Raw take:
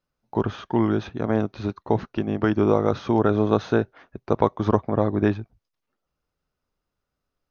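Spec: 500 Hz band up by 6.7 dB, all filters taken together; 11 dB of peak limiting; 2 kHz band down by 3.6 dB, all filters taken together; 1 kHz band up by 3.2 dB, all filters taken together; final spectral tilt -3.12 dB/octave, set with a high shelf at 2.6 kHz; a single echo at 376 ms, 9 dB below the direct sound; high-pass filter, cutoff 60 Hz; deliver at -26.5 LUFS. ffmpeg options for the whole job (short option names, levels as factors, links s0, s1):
-af "highpass=60,equalizer=f=500:t=o:g=8,equalizer=f=1000:t=o:g=3,equalizer=f=2000:t=o:g=-6,highshelf=f=2600:g=-4,alimiter=limit=0.355:level=0:latency=1,aecho=1:1:376:0.355,volume=0.668"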